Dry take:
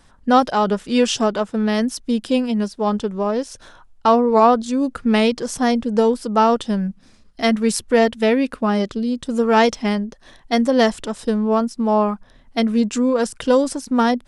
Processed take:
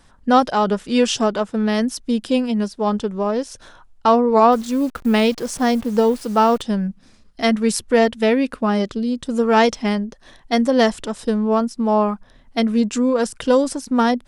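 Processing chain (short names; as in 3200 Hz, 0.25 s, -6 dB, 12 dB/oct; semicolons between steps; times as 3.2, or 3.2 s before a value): 4.52–6.62 level-crossing sampler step -36.5 dBFS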